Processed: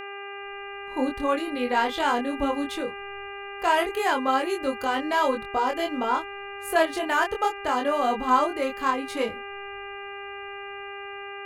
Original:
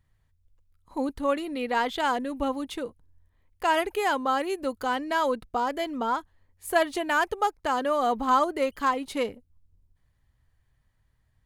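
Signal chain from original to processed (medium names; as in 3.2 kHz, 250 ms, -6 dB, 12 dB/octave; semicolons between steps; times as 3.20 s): chorus 0.21 Hz, depth 2.4 ms; level rider gain up to 13 dB; mains buzz 400 Hz, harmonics 7, -30 dBFS -2 dB/octave; trim -7.5 dB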